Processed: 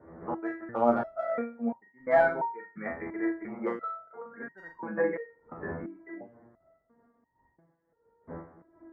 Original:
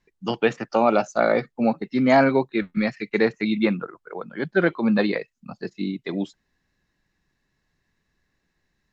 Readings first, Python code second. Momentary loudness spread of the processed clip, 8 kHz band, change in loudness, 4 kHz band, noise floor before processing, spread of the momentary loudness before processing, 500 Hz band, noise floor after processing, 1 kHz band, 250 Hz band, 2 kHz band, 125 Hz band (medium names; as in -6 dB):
19 LU, no reading, -9.0 dB, under -25 dB, -75 dBFS, 15 LU, -7.5 dB, -74 dBFS, -6.0 dB, -12.0 dB, -9.0 dB, -15.5 dB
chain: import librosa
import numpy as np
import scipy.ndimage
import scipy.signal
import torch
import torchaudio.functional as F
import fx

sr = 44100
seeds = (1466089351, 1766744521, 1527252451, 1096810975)

p1 = fx.dmg_wind(x, sr, seeds[0], corner_hz=320.0, level_db=-37.0)
p2 = scipy.signal.sosfilt(scipy.signal.butter(12, 2000.0, 'lowpass', fs=sr, output='sos'), p1)
p3 = fx.spec_box(p2, sr, start_s=3.48, length_s=0.57, low_hz=380.0, high_hz=1400.0, gain_db=11)
p4 = scipy.signal.sosfilt(scipy.signal.butter(2, 59.0, 'highpass', fs=sr, output='sos'), p3)
p5 = fx.low_shelf(p4, sr, hz=300.0, db=-11.5)
p6 = np.clip(10.0 ** (11.5 / 20.0) * p5, -1.0, 1.0) / 10.0 ** (11.5 / 20.0)
p7 = p5 + (p6 * 10.0 ** (-8.5 / 20.0))
p8 = fx.tremolo_random(p7, sr, seeds[1], hz=3.5, depth_pct=55)
p9 = fx.doubler(p8, sr, ms=42.0, db=-6.0)
p10 = fx.echo_feedback(p9, sr, ms=85, feedback_pct=35, wet_db=-20.5)
p11 = fx.resonator_held(p10, sr, hz=2.9, low_hz=83.0, high_hz=930.0)
y = p11 * 10.0 ** (4.5 / 20.0)